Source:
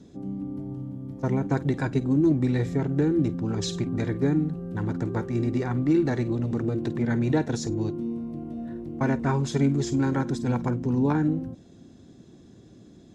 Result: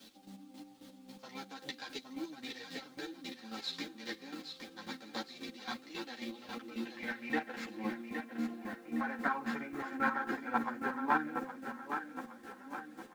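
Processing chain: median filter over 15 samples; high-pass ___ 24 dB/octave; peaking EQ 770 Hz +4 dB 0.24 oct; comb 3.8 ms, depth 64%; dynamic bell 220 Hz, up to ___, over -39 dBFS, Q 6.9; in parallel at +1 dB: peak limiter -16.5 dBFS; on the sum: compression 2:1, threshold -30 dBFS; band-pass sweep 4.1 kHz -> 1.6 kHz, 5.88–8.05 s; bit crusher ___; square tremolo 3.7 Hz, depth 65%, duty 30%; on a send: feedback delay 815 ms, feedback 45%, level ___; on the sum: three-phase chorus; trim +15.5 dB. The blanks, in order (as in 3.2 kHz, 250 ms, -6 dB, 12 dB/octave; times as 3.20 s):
130 Hz, +6 dB, 12-bit, -7 dB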